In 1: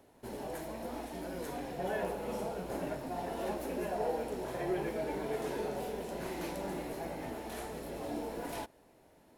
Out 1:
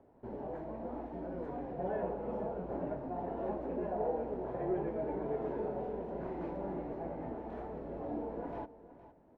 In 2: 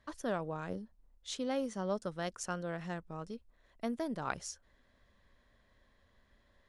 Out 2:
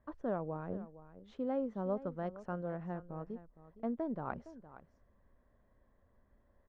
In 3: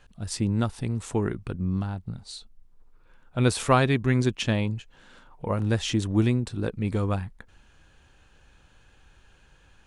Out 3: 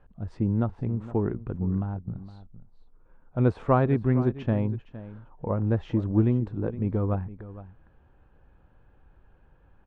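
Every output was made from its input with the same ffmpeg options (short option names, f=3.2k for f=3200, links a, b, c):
-af "lowpass=1k,aecho=1:1:463:0.168"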